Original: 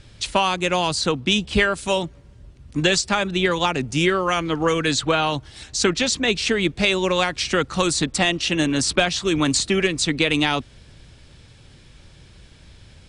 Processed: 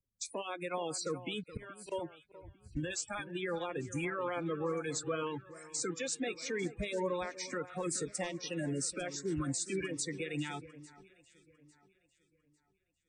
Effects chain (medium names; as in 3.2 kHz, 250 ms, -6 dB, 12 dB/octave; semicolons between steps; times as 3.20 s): coarse spectral quantiser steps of 30 dB; compression 2:1, threshold -34 dBFS, peak gain reduction 11 dB; graphic EQ 500/4000/8000 Hz +9/-9/+5 dB; spectral noise reduction 27 dB; 1.43–1.92 s: slow attack 293 ms; peak limiter -23 dBFS, peak gain reduction 10.5 dB; on a send: echo whose repeats swap between lows and highs 425 ms, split 1.9 kHz, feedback 66%, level -12.5 dB; on the sum: three bands expanded up and down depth 40%; trim -5 dB